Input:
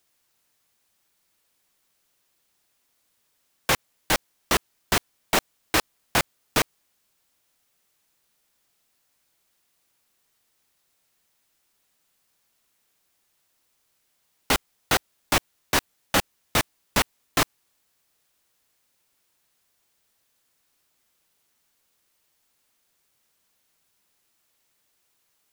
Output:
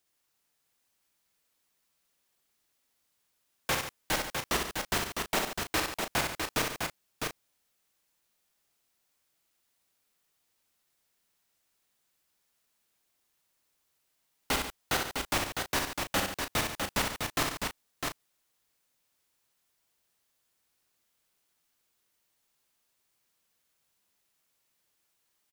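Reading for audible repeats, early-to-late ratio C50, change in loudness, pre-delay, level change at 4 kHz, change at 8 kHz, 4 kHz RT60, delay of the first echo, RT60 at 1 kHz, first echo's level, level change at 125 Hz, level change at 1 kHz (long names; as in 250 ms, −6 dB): 5, no reverb audible, −6.0 dB, no reverb audible, −5.5 dB, −5.5 dB, no reverb audible, 61 ms, no reverb audible, −5.0 dB, −5.5 dB, −5.5 dB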